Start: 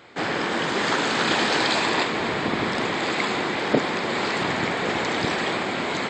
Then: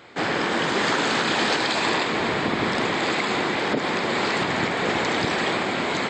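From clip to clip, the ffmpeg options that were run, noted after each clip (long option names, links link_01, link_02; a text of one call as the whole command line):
ffmpeg -i in.wav -af "alimiter=limit=-13dB:level=0:latency=1:release=121,volume=1.5dB" out.wav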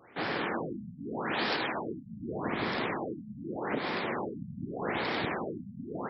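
ffmpeg -i in.wav -af "afftfilt=real='re*lt(b*sr/1024,230*pow(5800/230,0.5+0.5*sin(2*PI*0.83*pts/sr)))':imag='im*lt(b*sr/1024,230*pow(5800/230,0.5+0.5*sin(2*PI*0.83*pts/sr)))':win_size=1024:overlap=0.75,volume=-8.5dB" out.wav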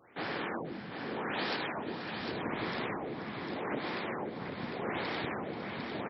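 ffmpeg -i in.wav -af "aecho=1:1:485|551|752:0.211|0.211|0.501,volume=-4dB" out.wav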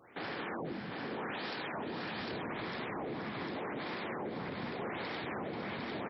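ffmpeg -i in.wav -af "alimiter=level_in=9dB:limit=-24dB:level=0:latency=1:release=24,volume=-9dB,volume=1.5dB" out.wav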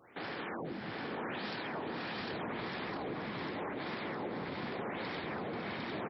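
ffmpeg -i in.wav -af "aecho=1:1:659:0.531,volume=-1dB" out.wav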